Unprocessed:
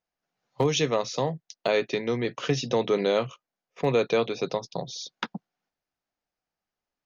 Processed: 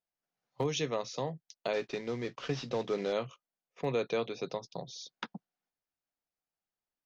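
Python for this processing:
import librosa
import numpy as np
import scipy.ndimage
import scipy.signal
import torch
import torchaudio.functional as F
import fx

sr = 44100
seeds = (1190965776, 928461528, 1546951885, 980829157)

y = fx.cvsd(x, sr, bps=32000, at=(1.73, 3.13))
y = F.gain(torch.from_numpy(y), -8.5).numpy()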